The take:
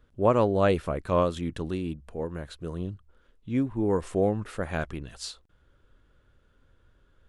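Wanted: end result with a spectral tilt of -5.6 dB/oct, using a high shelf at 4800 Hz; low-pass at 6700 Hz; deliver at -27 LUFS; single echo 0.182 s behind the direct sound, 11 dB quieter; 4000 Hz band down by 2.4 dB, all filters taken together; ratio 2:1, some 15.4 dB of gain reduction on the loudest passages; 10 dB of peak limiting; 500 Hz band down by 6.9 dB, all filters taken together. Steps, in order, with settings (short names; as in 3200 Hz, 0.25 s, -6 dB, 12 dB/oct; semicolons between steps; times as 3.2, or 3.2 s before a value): LPF 6700 Hz; bell 500 Hz -8.5 dB; bell 4000 Hz -5 dB; high shelf 4800 Hz +5.5 dB; compressor 2:1, threshold -50 dBFS; limiter -38.5 dBFS; echo 0.182 s -11 dB; gain +22.5 dB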